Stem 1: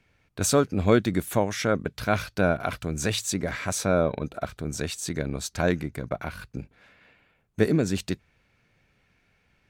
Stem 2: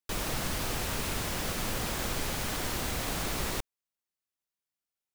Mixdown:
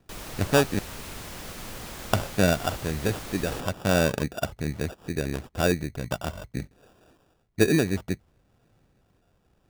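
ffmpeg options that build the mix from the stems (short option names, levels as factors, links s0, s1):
-filter_complex "[0:a]lowpass=2200,aphaser=in_gain=1:out_gain=1:delay=2.8:decay=0.24:speed=0.46:type=sinusoidal,acrusher=samples=21:mix=1:aa=0.000001,volume=1.12,asplit=3[s0][s1][s2];[s0]atrim=end=0.79,asetpts=PTS-STARTPTS,afade=t=out:st=0.786:d=0.004:c=hsin[s3];[s1]atrim=start=0.79:end=2.13,asetpts=PTS-STARTPTS,volume=0[s4];[s2]atrim=start=2.13,asetpts=PTS-STARTPTS,afade=t=in:d=0.004:c=hsin[s5];[s3][s4][s5]concat=n=3:v=0:a=1[s6];[1:a]volume=0.501[s7];[s6][s7]amix=inputs=2:normalize=0"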